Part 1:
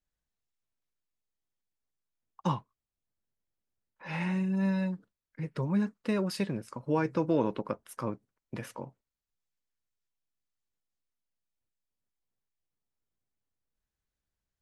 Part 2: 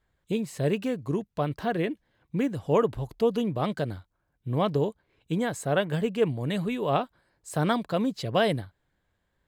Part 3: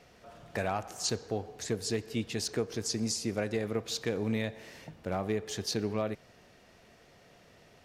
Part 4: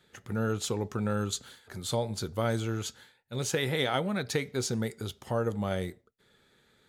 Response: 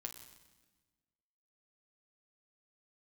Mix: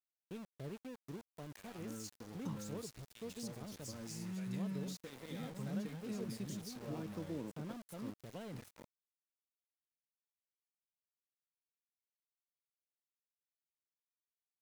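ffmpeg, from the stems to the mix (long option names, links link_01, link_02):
-filter_complex "[0:a]highpass=130,bass=frequency=250:gain=3,treble=frequency=4000:gain=14,volume=-13.5dB[link_01];[1:a]volume=-18.5dB[link_02];[2:a]aderivative,adelay=1000,volume=0.5dB[link_03];[3:a]aecho=1:1:3.8:0.66,adelay=1500,volume=-17dB[link_04];[link_01][link_02][link_03][link_04]amix=inputs=4:normalize=0,acrossover=split=370[link_05][link_06];[link_06]acompressor=threshold=-57dB:ratio=2.5[link_07];[link_05][link_07]amix=inputs=2:normalize=0,aeval=exprs='val(0)*gte(abs(val(0)),0.00316)':channel_layout=same"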